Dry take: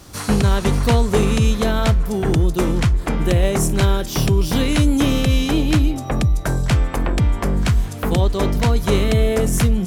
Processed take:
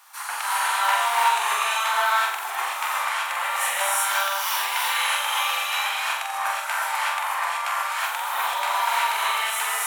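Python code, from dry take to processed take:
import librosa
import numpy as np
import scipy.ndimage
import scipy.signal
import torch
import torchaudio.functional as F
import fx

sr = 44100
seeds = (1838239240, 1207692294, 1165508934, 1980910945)

p1 = scipy.signal.sosfilt(scipy.signal.ellip(4, 1.0, 70, 880.0, 'highpass', fs=sr, output='sos'), x)
p2 = fx.peak_eq(p1, sr, hz=5100.0, db=-11.0, octaves=1.8)
p3 = p2 + fx.room_flutter(p2, sr, wall_m=7.6, rt60_s=0.58, dry=0)
y = fx.rev_gated(p3, sr, seeds[0], gate_ms=400, shape='rising', drr_db=-7.0)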